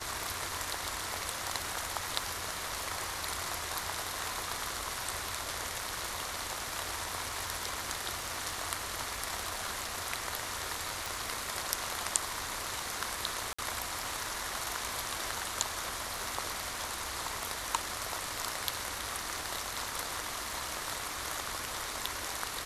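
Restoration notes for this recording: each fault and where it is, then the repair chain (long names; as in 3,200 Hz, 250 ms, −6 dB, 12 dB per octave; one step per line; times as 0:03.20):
surface crackle 47 per second −42 dBFS
0:11.06: click
0:13.53–0:13.59: drop-out 55 ms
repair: click removal
repair the gap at 0:13.53, 55 ms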